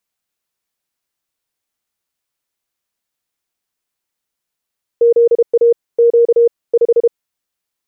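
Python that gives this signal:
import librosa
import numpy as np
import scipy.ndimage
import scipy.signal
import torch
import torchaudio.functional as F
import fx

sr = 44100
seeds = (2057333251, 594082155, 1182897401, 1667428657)

y = fx.morse(sr, text='ZA Q 5', wpm=32, hz=469.0, level_db=-6.0)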